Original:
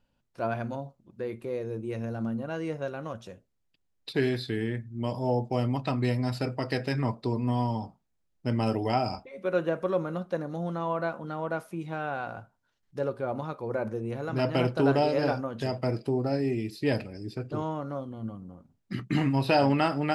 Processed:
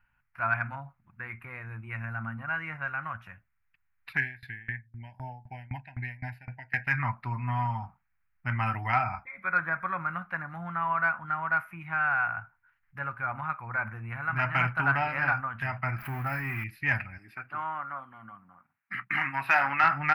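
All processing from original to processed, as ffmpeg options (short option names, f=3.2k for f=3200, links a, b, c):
-filter_complex "[0:a]asettb=1/sr,asplit=3[a][b][c];[a]atrim=end=4.174[d];[b]atrim=start=4.17:end=6.87,asetpts=PTS-STARTPTS,afade=t=in:d=0.004:c=qsin,afade=t=out:st=2.696:d=0.004:c=qsin,asuperstop=centerf=1200:order=8:qfactor=2,aeval=exprs='val(0)*pow(10,-24*if(lt(mod(3.9*n/s,1),2*abs(3.9)/1000),1-mod(3.9*n/s,1)/(2*abs(3.9)/1000),(mod(3.9*n/s,1)-2*abs(3.9)/1000)/(1-2*abs(3.9)/1000))/20)':c=same[e];[c]atrim=start=6.866[f];[d][e]acrossfade=d=0.004:c1=hsin:c2=qsin[g];[g][f]acrossfade=d=0.004:c1=qsin:c2=hsin,asettb=1/sr,asplit=3[h][i][j];[h]atrim=end=9.044[k];[i]atrim=start=9.04:end=10,asetpts=PTS-STARTPTS,afade=t=in:d=0.004:c=qsin,afade=t=out:st=0.956:d=0.004:c=qsin,asuperstop=centerf=2800:order=8:qfactor=6.4,acrossover=split=3200[l][m];[m]acompressor=threshold=-53dB:ratio=4:attack=1:release=60[n];[l][n]amix=inputs=2:normalize=0[o];[j]atrim=start=9.996[p];[k][o]acrossfade=d=0.004:c1=hsin:c2=qsin[q];[q][p]acrossfade=d=0.004:c1=qsin:c2=hsin,asettb=1/sr,asplit=3[r][s][t];[r]atrim=end=15.984[u];[s]atrim=start=15.98:end=16.64,asetpts=PTS-STARTPTS,afade=t=in:d=0.004:c=qsin,afade=t=out:st=0.656:d=0.004:c=qsin,aeval=exprs='val(0)+0.5*0.01*sgn(val(0))':c=same,highshelf=f=7.4k:g=10.5[v];[t]atrim=start=16.636[w];[u][v]acrossfade=d=0.004:c1=hsin:c2=qsin[x];[x][w]acrossfade=d=0.004:c1=qsin:c2=hsin,asettb=1/sr,asplit=3[y][z][aa];[y]atrim=end=17.184[ab];[z]atrim=start=17.18:end=19.84,asetpts=PTS-STARTPTS,afade=t=in:d=0.004:c=qsin,afade=t=out:st=2.656:d=0.004:c=qsin,equalizer=f=8.6k:t=o:w=0.28:g=5.5,asoftclip=type=hard:threshold=-17dB,highpass=300[ac];[aa]atrim=start=19.836[ad];[ab][ac]acrossfade=d=0.004:c1=hsin:c2=qsin[ae];[ae][ad]acrossfade=d=0.004:c1=qsin:c2=hsin,firequalizer=gain_entry='entry(100,0);entry(260,-15);entry(450,-27);entry(750,-2);entry(1400,12);entry(2300,10);entry(3500,-16);entry(7600,-23);entry(12000,-1)':delay=0.05:min_phase=1,acontrast=80,volume=-6dB"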